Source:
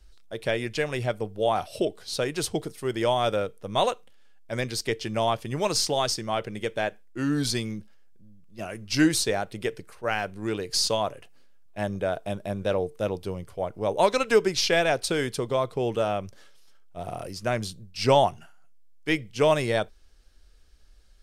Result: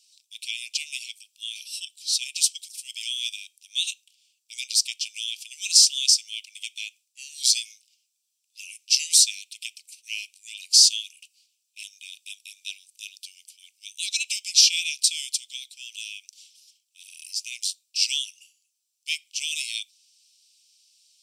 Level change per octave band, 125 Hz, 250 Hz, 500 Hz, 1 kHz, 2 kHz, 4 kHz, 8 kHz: under -40 dB, under -40 dB, under -40 dB, under -40 dB, -3.5 dB, +9.0 dB, +12.0 dB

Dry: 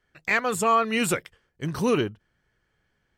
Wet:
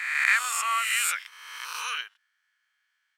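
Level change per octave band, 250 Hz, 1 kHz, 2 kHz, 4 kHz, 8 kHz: under -40 dB, -4.5 dB, +3.5 dB, +3.5 dB, +4.5 dB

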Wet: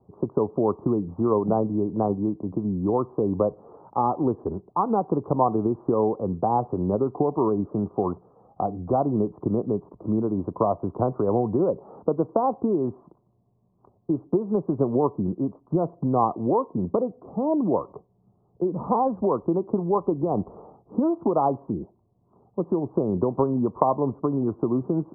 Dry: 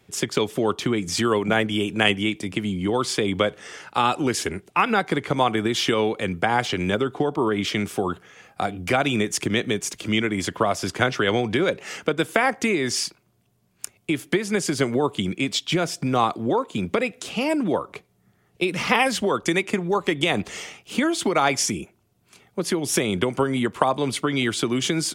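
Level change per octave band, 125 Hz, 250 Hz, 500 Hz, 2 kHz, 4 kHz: 0.0 dB, 0.0 dB, 0.0 dB, under -35 dB, under -40 dB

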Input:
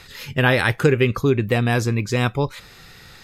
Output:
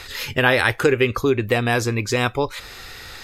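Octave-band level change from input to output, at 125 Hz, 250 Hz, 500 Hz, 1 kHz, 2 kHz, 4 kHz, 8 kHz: -5.0 dB, -2.0 dB, +1.0 dB, +2.0 dB, +2.0 dB, +2.5 dB, +4.0 dB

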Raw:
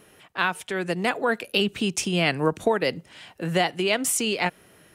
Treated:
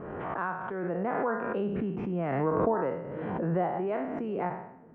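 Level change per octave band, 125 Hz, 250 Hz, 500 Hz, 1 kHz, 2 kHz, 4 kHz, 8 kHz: -3.0 dB, -4.0 dB, -4.0 dB, -3.0 dB, -13.0 dB, under -30 dB, under -40 dB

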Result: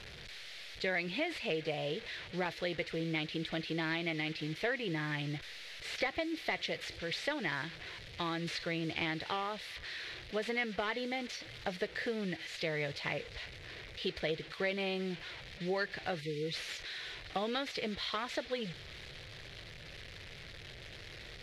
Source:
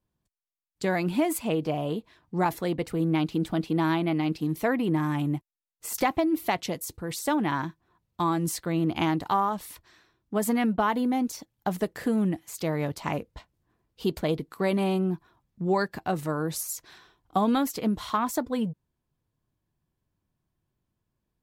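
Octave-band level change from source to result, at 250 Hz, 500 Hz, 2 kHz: -14.0 dB, -7.5 dB, -0.5 dB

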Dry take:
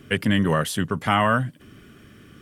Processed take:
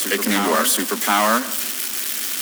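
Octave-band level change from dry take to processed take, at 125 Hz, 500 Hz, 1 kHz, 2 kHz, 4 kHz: under -10 dB, +3.0 dB, +4.0 dB, +4.0 dB, +8.0 dB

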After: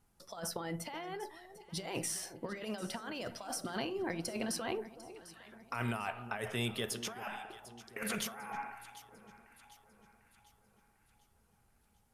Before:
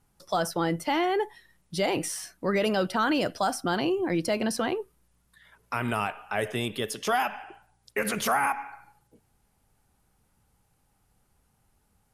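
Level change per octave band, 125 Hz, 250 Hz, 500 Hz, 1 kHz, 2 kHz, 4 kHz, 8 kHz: -7.5 dB, -11.5 dB, -13.0 dB, -14.5 dB, -11.0 dB, -8.0 dB, -5.0 dB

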